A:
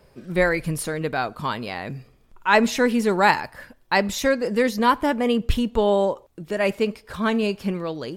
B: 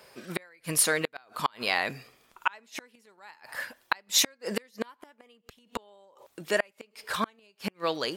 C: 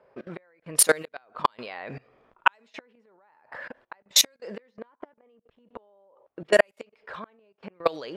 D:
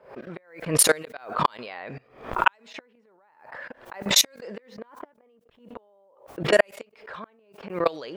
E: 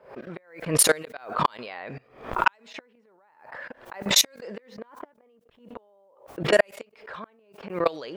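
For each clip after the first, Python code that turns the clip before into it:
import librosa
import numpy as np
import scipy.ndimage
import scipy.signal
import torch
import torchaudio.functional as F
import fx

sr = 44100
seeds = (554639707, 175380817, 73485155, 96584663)

y1 = fx.gate_flip(x, sr, shuts_db=-14.0, range_db=-37)
y1 = fx.highpass(y1, sr, hz=1300.0, slope=6)
y1 = F.gain(torch.from_numpy(y1), 8.5).numpy()
y2 = fx.peak_eq(y1, sr, hz=540.0, db=5.5, octaves=0.96)
y2 = fx.level_steps(y2, sr, step_db=22)
y2 = fx.env_lowpass(y2, sr, base_hz=1300.0, full_db=-27.0)
y2 = F.gain(torch.from_numpy(y2), 7.0).numpy()
y3 = fx.pre_swell(y2, sr, db_per_s=120.0)
y4 = 10.0 ** (-3.5 / 20.0) * np.tanh(y3 / 10.0 ** (-3.5 / 20.0))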